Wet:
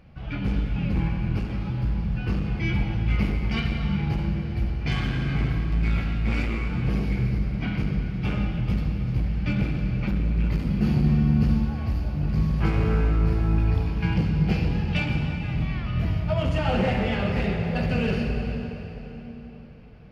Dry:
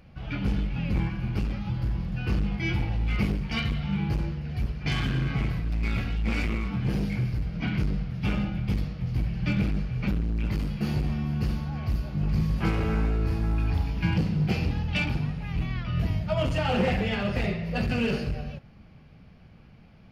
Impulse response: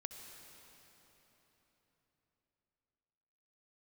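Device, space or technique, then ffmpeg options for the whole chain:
swimming-pool hall: -filter_complex "[1:a]atrim=start_sample=2205[link_01];[0:a][link_01]afir=irnorm=-1:irlink=0,highshelf=frequency=4500:gain=-6.5,asettb=1/sr,asplit=3[link_02][link_03][link_04];[link_02]atrim=end=10.654[link_05];[link_03]atrim=start=10.65:end=11.65,asetpts=PTS-STARTPTS,afade=type=in:duration=0.004:curve=qsin,afade=type=out:start_time=0.996:duration=0.004:curve=qsin,equalizer=frequency=190:width_type=o:width=1.4:gain=6.5[link_06];[link_04]atrim=start=11.646[link_07];[link_05][link_06]acrossfade=duration=0.004:curve1=hsin:curve2=qsin[link_08];[link_08][link_07]acrossfade=duration=0.004:curve1=qsin:curve2=hsin,volume=5dB"

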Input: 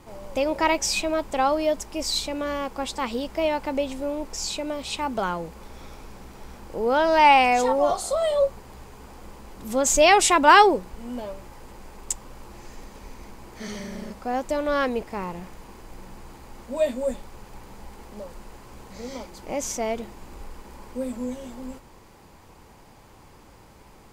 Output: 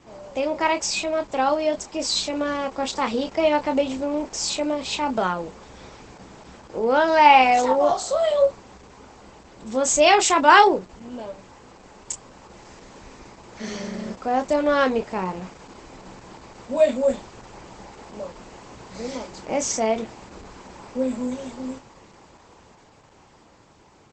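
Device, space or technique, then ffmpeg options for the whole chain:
video call: -filter_complex "[0:a]highpass=frequency=120:poles=1,asplit=2[link_01][link_02];[link_02]adelay=27,volume=-8dB[link_03];[link_01][link_03]amix=inputs=2:normalize=0,dynaudnorm=framelen=120:gausssize=31:maxgain=5dB" -ar 48000 -c:a libopus -b:a 12k

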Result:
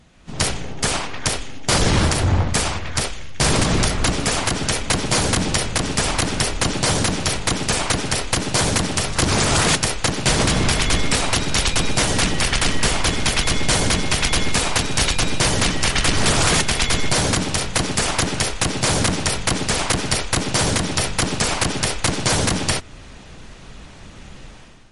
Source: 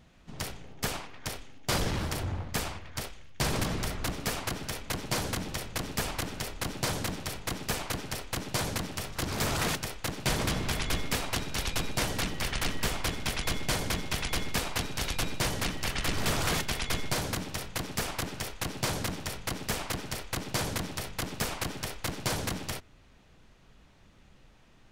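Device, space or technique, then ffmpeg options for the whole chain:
low-bitrate web radio: -af "equalizer=frequency=12000:width_type=o:width=1.5:gain=4.5,dynaudnorm=framelen=110:gausssize=7:maxgain=12.5dB,alimiter=limit=-14dB:level=0:latency=1:release=293,volume=6.5dB" -ar 44100 -c:a libmp3lame -b:a 48k

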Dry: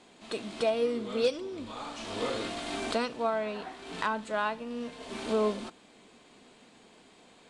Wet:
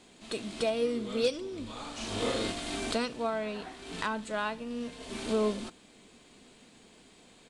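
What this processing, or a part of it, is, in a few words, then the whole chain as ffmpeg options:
smiley-face EQ: -filter_complex "[0:a]lowshelf=frequency=100:gain=8.5,equalizer=frequency=890:width_type=o:width=1.6:gain=-4,highshelf=frequency=7300:gain=7,asplit=3[link_01][link_02][link_03];[link_01]afade=type=out:start_time=1.96:duration=0.02[link_04];[link_02]asplit=2[link_05][link_06];[link_06]adelay=40,volume=-2dB[link_07];[link_05][link_07]amix=inputs=2:normalize=0,afade=type=in:start_time=1.96:duration=0.02,afade=type=out:start_time=2.51:duration=0.02[link_08];[link_03]afade=type=in:start_time=2.51:duration=0.02[link_09];[link_04][link_08][link_09]amix=inputs=3:normalize=0"

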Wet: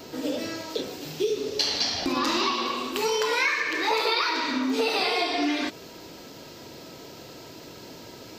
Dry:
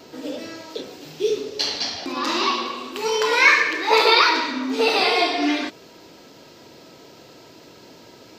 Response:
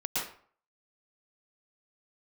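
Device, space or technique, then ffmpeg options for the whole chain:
ASMR close-microphone chain: -filter_complex "[0:a]lowshelf=frequency=110:gain=7,acompressor=threshold=-24dB:ratio=6,highshelf=frequency=8300:gain=7,asettb=1/sr,asplit=3[link_01][link_02][link_03];[link_01]atrim=end=1.984[link_04];[link_02]atrim=start=1.98:end=2.54,asetpts=PTS-STARTPTS,afade=type=in:duration=0.004:curve=qsin,afade=type=out:start_time=0.556:duration=0.004:curve=qsin,lowshelf=frequency=110:gain=12[link_05];[link_03]atrim=start=2.536[link_06];[link_04][link_05]acrossfade=duration=0.004:curve1=hsin:curve2=qsin[link_07];[link_07][link_06]acrossfade=duration=0.004:curve1=qsin:curve2=hsin,volume=1.5dB"

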